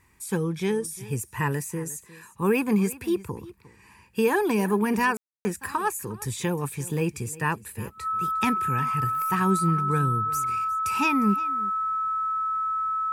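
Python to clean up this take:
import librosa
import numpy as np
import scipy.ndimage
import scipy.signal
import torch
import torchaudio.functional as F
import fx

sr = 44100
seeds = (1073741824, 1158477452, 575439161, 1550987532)

y = fx.notch(x, sr, hz=1300.0, q=30.0)
y = fx.fix_ambience(y, sr, seeds[0], print_start_s=3.53, print_end_s=4.03, start_s=5.17, end_s=5.45)
y = fx.fix_echo_inverse(y, sr, delay_ms=356, level_db=-19.0)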